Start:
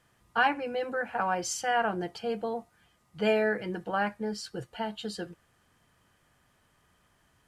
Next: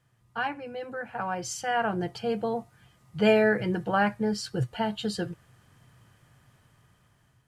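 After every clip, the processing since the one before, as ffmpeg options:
-af "equalizer=f=120:w=1.9:g=14,dynaudnorm=f=730:g=5:m=11dB,volume=-6dB"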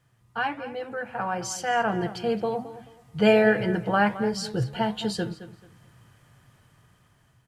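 -filter_complex "[0:a]flanger=delay=7:depth=4:regen=-86:speed=1.4:shape=sinusoidal,asplit=2[a][b];[b]adelay=217,lowpass=f=4.4k:p=1,volume=-14dB,asplit=2[c][d];[d]adelay=217,lowpass=f=4.4k:p=1,volume=0.26,asplit=2[e][f];[f]adelay=217,lowpass=f=4.4k:p=1,volume=0.26[g];[a][c][e][g]amix=inputs=4:normalize=0,volume=7dB"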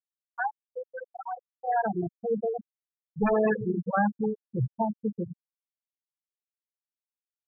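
-af "aeval=exprs='0.168*(abs(mod(val(0)/0.168+3,4)-2)-1)':c=same,bandreject=f=47.08:t=h:w=4,bandreject=f=94.16:t=h:w=4,bandreject=f=141.24:t=h:w=4,bandreject=f=188.32:t=h:w=4,bandreject=f=235.4:t=h:w=4,bandreject=f=282.48:t=h:w=4,bandreject=f=329.56:t=h:w=4,bandreject=f=376.64:t=h:w=4,bandreject=f=423.72:t=h:w=4,bandreject=f=470.8:t=h:w=4,bandreject=f=517.88:t=h:w=4,bandreject=f=564.96:t=h:w=4,bandreject=f=612.04:t=h:w=4,afftfilt=real='re*gte(hypot(re,im),0.251)':imag='im*gte(hypot(re,im),0.251)':win_size=1024:overlap=0.75"

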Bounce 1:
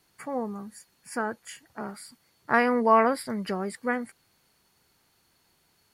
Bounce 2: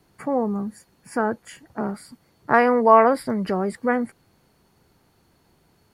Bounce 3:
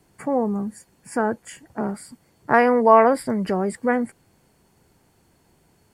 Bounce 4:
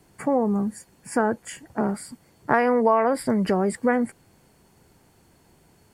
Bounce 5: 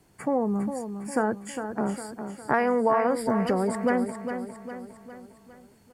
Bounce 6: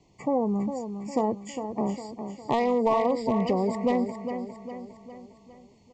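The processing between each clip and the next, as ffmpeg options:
-filter_complex "[0:a]tiltshelf=f=1.1k:g=7,acrossover=split=470|5500[a][b][c];[a]alimiter=level_in=2dB:limit=-24dB:level=0:latency=1,volume=-2dB[d];[d][b][c]amix=inputs=3:normalize=0,volume=5.5dB"
-af "equalizer=f=1.25k:t=o:w=0.33:g=-4,equalizer=f=4k:t=o:w=0.33:g=-5,equalizer=f=8k:t=o:w=0.33:g=8,volume=1dB"
-af "acompressor=threshold=-19dB:ratio=4,volume=2.5dB"
-af "aecho=1:1:406|812|1218|1624|2030|2436:0.376|0.184|0.0902|0.0442|0.0217|0.0106,volume=-3.5dB"
-af "aresample=16000,aeval=exprs='clip(val(0),-1,0.1)':c=same,aresample=44100,asuperstop=centerf=1500:order=8:qfactor=1.9"

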